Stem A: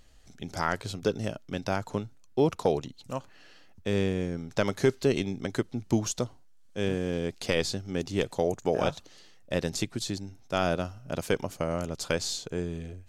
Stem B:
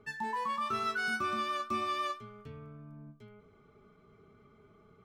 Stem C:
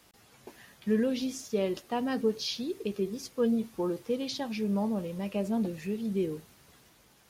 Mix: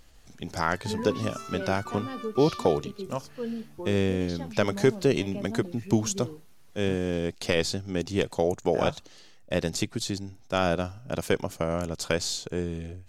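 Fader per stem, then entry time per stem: +2.0, −7.5, −6.5 decibels; 0.00, 0.65, 0.00 seconds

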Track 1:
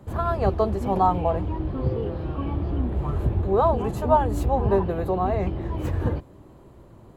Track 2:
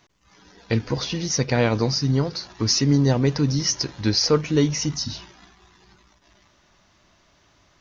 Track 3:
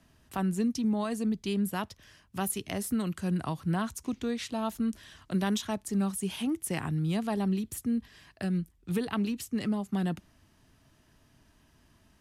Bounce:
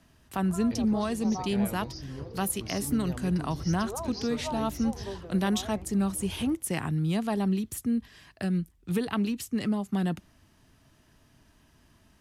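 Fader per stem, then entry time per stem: −17.5, −20.0, +2.0 decibels; 0.35, 0.00, 0.00 seconds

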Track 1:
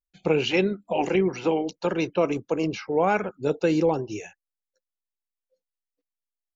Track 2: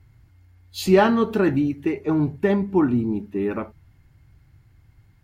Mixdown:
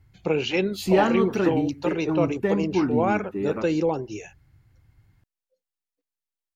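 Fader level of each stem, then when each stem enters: −1.5, −4.0 decibels; 0.00, 0.00 seconds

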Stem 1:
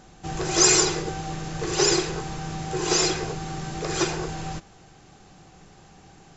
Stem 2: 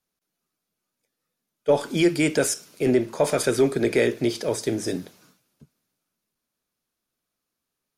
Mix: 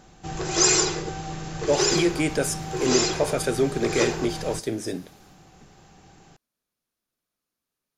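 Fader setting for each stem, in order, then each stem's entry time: −1.5, −3.0 decibels; 0.00, 0.00 seconds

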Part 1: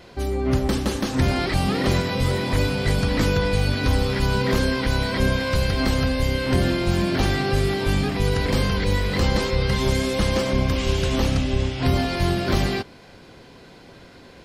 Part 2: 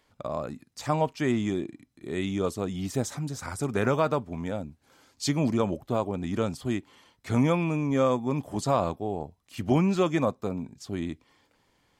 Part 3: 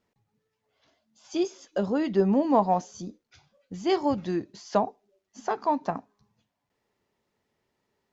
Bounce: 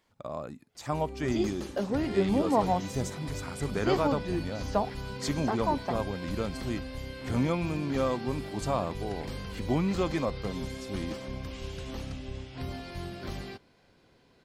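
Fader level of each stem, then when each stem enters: −17.0, −5.0, −4.0 decibels; 0.75, 0.00, 0.00 seconds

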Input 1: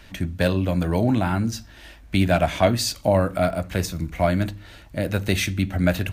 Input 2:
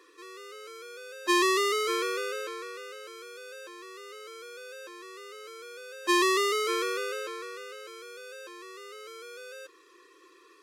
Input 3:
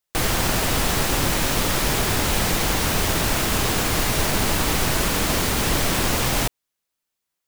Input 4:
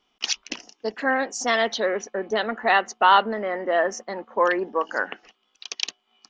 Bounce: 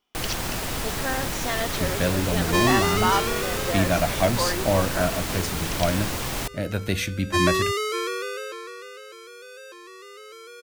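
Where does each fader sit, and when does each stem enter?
−3.5, +1.5, −7.5, −7.0 decibels; 1.60, 1.25, 0.00, 0.00 seconds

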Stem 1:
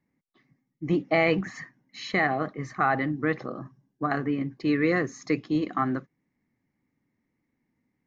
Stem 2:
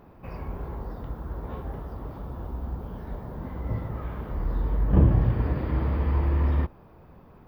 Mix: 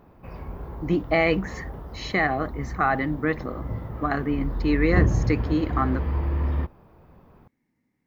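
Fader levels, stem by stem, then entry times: +1.5, −1.5 decibels; 0.00, 0.00 seconds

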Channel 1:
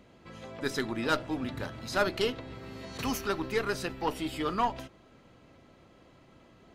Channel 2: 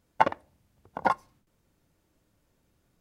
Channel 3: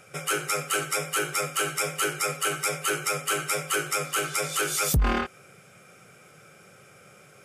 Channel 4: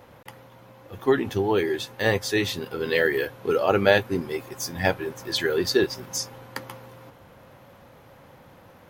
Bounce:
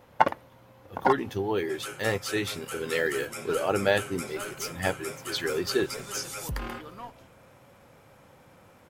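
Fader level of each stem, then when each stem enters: −14.5, +1.0, −12.0, −5.5 decibels; 2.40, 0.00, 1.55, 0.00 seconds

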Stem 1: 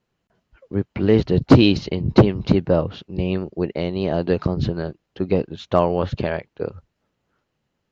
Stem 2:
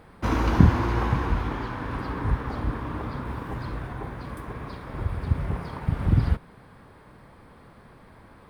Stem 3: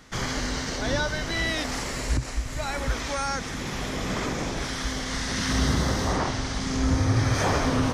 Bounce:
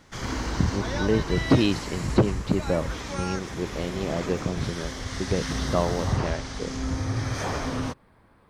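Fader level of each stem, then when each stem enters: −7.5, −8.0, −5.5 decibels; 0.00, 0.00, 0.00 seconds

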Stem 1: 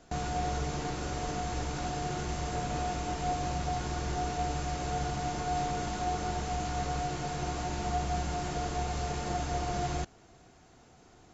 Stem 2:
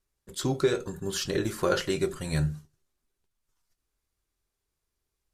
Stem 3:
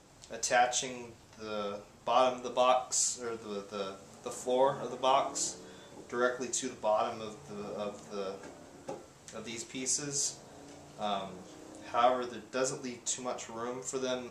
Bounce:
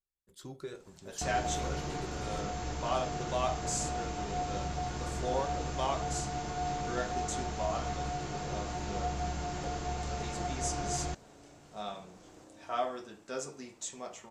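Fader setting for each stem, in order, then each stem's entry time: −3.0, −18.0, −6.0 decibels; 1.10, 0.00, 0.75 seconds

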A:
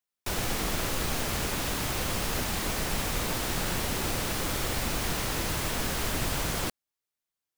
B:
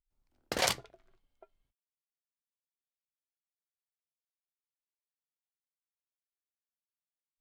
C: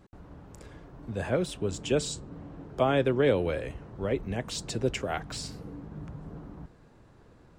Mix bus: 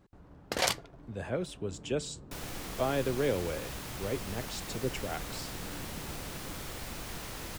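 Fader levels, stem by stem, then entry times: −11.0, +0.5, −6.0 decibels; 2.05, 0.00, 0.00 seconds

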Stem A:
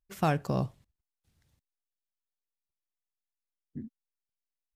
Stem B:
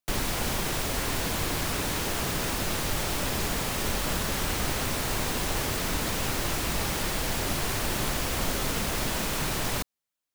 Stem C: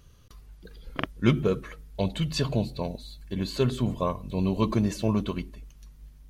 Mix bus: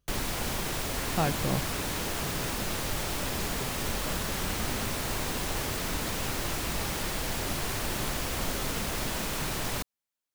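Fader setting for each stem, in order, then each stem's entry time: −1.5, −3.0, −19.5 decibels; 0.95, 0.00, 0.00 seconds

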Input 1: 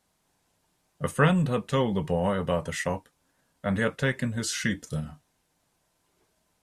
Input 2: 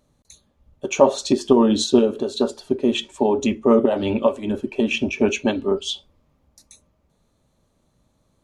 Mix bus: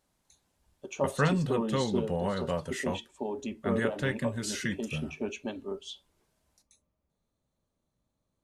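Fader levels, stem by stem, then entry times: −5.0, −16.0 decibels; 0.00, 0.00 seconds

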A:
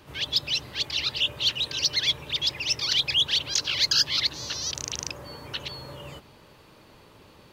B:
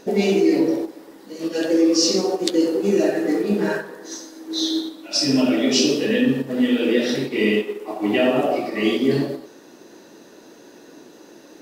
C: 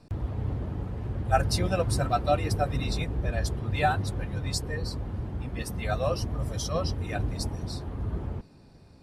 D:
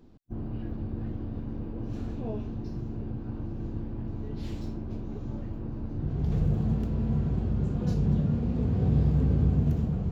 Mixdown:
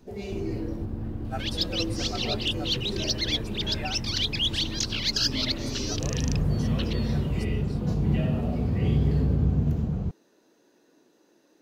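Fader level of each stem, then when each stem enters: −4.0, −17.5, −12.0, +0.5 decibels; 1.25, 0.00, 0.00, 0.00 seconds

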